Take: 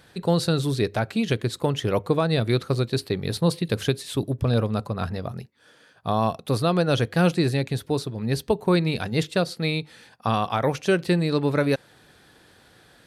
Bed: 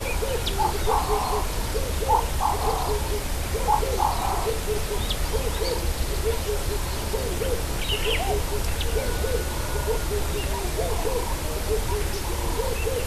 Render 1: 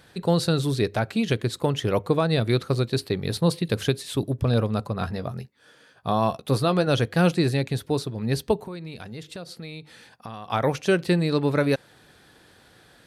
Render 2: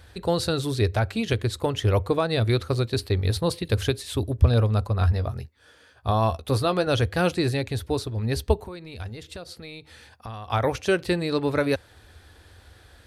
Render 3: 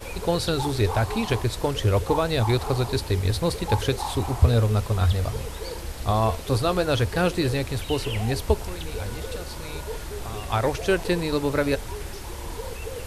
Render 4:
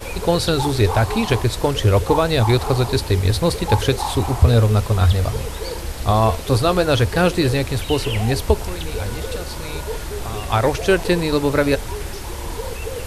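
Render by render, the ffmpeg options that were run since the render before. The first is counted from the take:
-filter_complex "[0:a]asettb=1/sr,asplit=3[a][b][c];[a]atrim=end=4.954[d];[b]atrim=start=4.95:end=6.87,asetpts=PTS-STARTPTS,afade=t=in:d=0.004:c=qsin,afade=t=out:st=1.916:d=0.004:c=qsin,asplit=2[e][f];[f]adelay=15,volume=-10.5dB[g];[e][g]amix=inputs=2:normalize=0,atrim=end_sample=84672[h];[c]atrim=start=6.866[i];[d][h]acrossfade=d=0.004:c1=hsin:c2=qsin[j];[j][i]acrossfade=d=0.004:c1=qsin:c2=hsin,asplit=3[k][l][m];[k]afade=t=out:st=8.64:d=0.02[n];[l]acompressor=threshold=-36dB:ratio=4:attack=3.2:release=140:knee=1:detection=peak,afade=t=in:st=8.64:d=0.02,afade=t=out:st=10.48:d=0.02[o];[m]afade=t=in:st=10.48:d=0.02[p];[n][o][p]amix=inputs=3:normalize=0"
-af "lowshelf=f=110:t=q:w=3:g=11"
-filter_complex "[1:a]volume=-8dB[a];[0:a][a]amix=inputs=2:normalize=0"
-af "volume=6dB,alimiter=limit=-2dB:level=0:latency=1"

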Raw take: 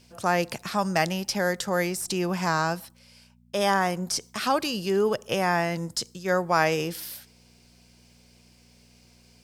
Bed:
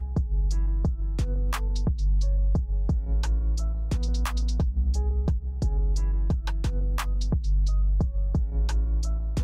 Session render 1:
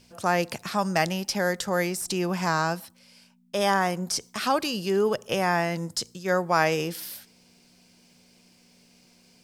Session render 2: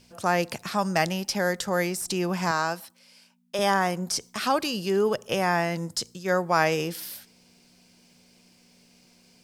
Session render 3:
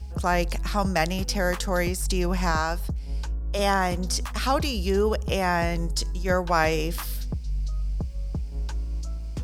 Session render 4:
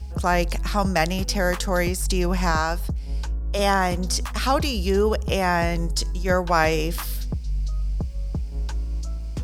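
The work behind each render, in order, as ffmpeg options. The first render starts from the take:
-af "bandreject=f=60:t=h:w=4,bandreject=f=120:t=h:w=4"
-filter_complex "[0:a]asettb=1/sr,asplit=3[a][b][c];[a]atrim=end=2.514[d];[b]atrim=start=2.51:end=3.59,asetpts=PTS-STARTPTS,afade=t=in:d=0.004:c=qsin,afade=t=out:st=1.076:d=0.004:c=qsin,highpass=f=340:p=1[e];[c]atrim=start=3.586[f];[d][e]acrossfade=d=0.004:c1=hsin:c2=qsin[g];[g][f]acrossfade=d=0.004:c1=qsin:c2=hsin"
-filter_complex "[1:a]volume=-5dB[a];[0:a][a]amix=inputs=2:normalize=0"
-af "volume=2.5dB"

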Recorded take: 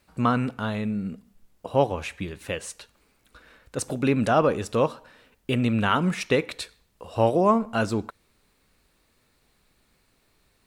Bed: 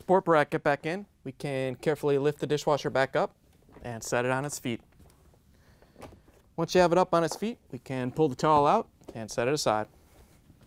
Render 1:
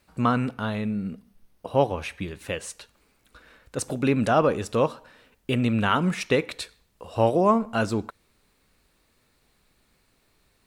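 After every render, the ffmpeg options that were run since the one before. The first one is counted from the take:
-filter_complex "[0:a]asettb=1/sr,asplit=3[a][b][c];[a]atrim=end=0.514[d];[b]atrim=start=0.51:end=2.21,asetpts=PTS-STARTPTS,afade=t=in:d=0.004:c=qsin,afade=t=out:st=1.696:d=0.004:c=qsin,bandreject=f=7.3k:w=5[e];[c]atrim=start=2.206[f];[d][e]acrossfade=d=0.004:c1=hsin:c2=qsin[g];[g][f]acrossfade=d=0.004:c1=qsin:c2=hsin"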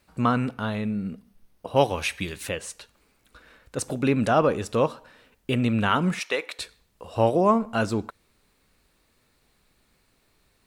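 -filter_complex "[0:a]asettb=1/sr,asplit=3[a][b][c];[a]atrim=end=1.764[d];[b]atrim=start=1.76:end=2.49,asetpts=PTS-STARTPTS,afade=t=in:d=0.004:c=qsin,afade=t=out:st=0.726:d=0.004:c=qsin,highshelf=f=2k:g=11.5[e];[c]atrim=start=2.486[f];[d][e]acrossfade=d=0.004:c1=hsin:c2=qsin[g];[g][f]acrossfade=d=0.004:c1=qsin:c2=hsin,asettb=1/sr,asplit=3[h][i][j];[h]atrim=end=6.194[k];[i]atrim=start=6.19:end=6.59,asetpts=PTS-STARTPTS,afade=t=in:d=0.004:c=qsin,afade=t=out:st=0.396:d=0.004:c=qsin,highpass=610[l];[j]atrim=start=6.586[m];[k][l]acrossfade=d=0.004:c1=hsin:c2=qsin[n];[n][m]acrossfade=d=0.004:c1=qsin:c2=hsin"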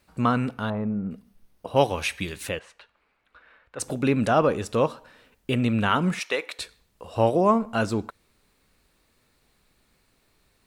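-filter_complex "[0:a]asettb=1/sr,asplit=3[a][b][c];[a]atrim=end=0.704[d];[b]atrim=start=0.7:end=1.11,asetpts=PTS-STARTPTS,afade=t=in:d=0.004:c=qsin,afade=t=out:st=0.406:d=0.004:c=qsin,lowpass=f=1k:t=q:w=1.7[e];[c]atrim=start=1.106[f];[d][e]acrossfade=d=0.004:c1=hsin:c2=qsin[g];[g][f]acrossfade=d=0.004:c1=qsin:c2=hsin,asettb=1/sr,asplit=3[h][i][j];[h]atrim=end=2.594[k];[i]atrim=start=2.59:end=3.8,asetpts=PTS-STARTPTS,afade=t=in:d=0.004:c=qsin,afade=t=out:st=1.206:d=0.004:c=qsin,acrossover=split=580 3200:gain=0.251 1 0.0708[l][m][n];[l][m][n]amix=inputs=3:normalize=0[o];[j]atrim=start=3.796[p];[k][o]acrossfade=d=0.004:c1=hsin:c2=qsin[q];[q][p]acrossfade=d=0.004:c1=qsin:c2=hsin"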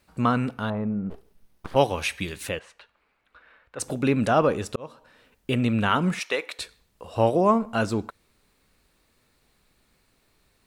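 -filter_complex "[0:a]asplit=3[a][b][c];[a]afade=t=out:st=1.09:d=0.02[d];[b]aeval=exprs='abs(val(0))':c=same,afade=t=in:st=1.09:d=0.02,afade=t=out:st=1.74:d=0.02[e];[c]afade=t=in:st=1.74:d=0.02[f];[d][e][f]amix=inputs=3:normalize=0,asplit=2[g][h];[g]atrim=end=4.76,asetpts=PTS-STARTPTS,afade=t=out:st=4.756:d=0.004:c=hsin[i];[h]atrim=start=4.76,asetpts=PTS-STARTPTS,afade=t=in:d=0.78:c=qsin[j];[i][j]concat=n=2:v=0:a=1"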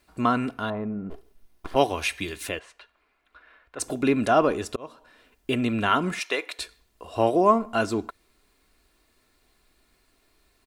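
-af "equalizer=f=110:w=1.5:g=-5.5,aecho=1:1:2.9:0.41"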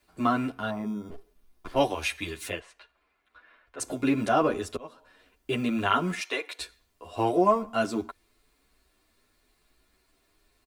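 -filter_complex "[0:a]acrossover=split=140|1400|3300[a][b][c][d];[a]acrusher=samples=38:mix=1:aa=0.000001[e];[e][b][c][d]amix=inputs=4:normalize=0,asplit=2[f][g];[g]adelay=9.7,afreqshift=0.86[h];[f][h]amix=inputs=2:normalize=1"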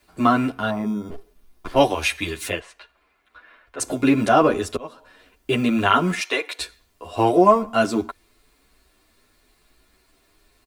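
-af "volume=7.5dB,alimiter=limit=-2dB:level=0:latency=1"

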